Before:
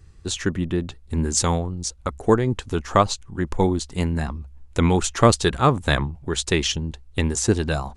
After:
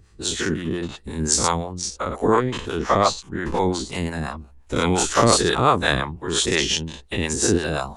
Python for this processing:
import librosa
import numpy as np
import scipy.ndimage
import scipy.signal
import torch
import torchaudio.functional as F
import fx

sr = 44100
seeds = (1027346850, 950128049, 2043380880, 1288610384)

y = fx.spec_dilate(x, sr, span_ms=120)
y = fx.high_shelf(y, sr, hz=8600.0, db=-10.0, at=(1.73, 3.85))
y = fx.harmonic_tremolo(y, sr, hz=5.7, depth_pct=70, crossover_hz=440.0)
y = fx.low_shelf(y, sr, hz=130.0, db=-8.5)